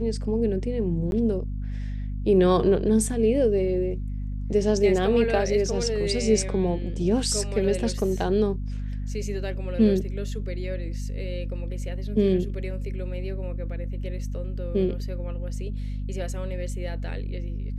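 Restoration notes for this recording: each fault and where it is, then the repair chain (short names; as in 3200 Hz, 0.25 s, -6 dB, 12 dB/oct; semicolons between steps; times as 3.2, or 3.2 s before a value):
hum 50 Hz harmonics 5 -30 dBFS
1.11–1.12 gap 11 ms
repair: de-hum 50 Hz, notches 5; interpolate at 1.11, 11 ms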